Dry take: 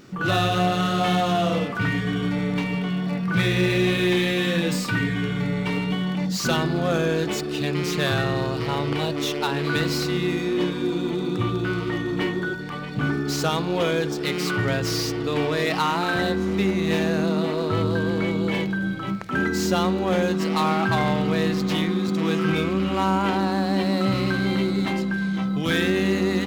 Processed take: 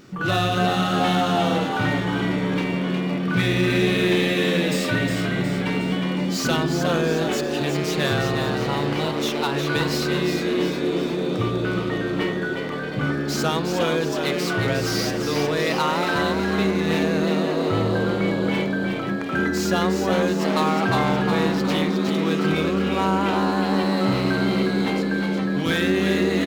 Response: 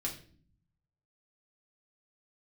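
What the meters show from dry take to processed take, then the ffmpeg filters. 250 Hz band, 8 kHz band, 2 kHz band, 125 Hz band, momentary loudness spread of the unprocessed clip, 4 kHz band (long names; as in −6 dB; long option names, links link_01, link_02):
+1.0 dB, +1.5 dB, +1.5 dB, 0.0 dB, 4 LU, +1.5 dB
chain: -filter_complex "[0:a]asplit=7[link_01][link_02][link_03][link_04][link_05][link_06][link_07];[link_02]adelay=361,afreqshift=83,volume=-6dB[link_08];[link_03]adelay=722,afreqshift=166,volume=-12dB[link_09];[link_04]adelay=1083,afreqshift=249,volume=-18dB[link_10];[link_05]adelay=1444,afreqshift=332,volume=-24.1dB[link_11];[link_06]adelay=1805,afreqshift=415,volume=-30.1dB[link_12];[link_07]adelay=2166,afreqshift=498,volume=-36.1dB[link_13];[link_01][link_08][link_09][link_10][link_11][link_12][link_13]amix=inputs=7:normalize=0"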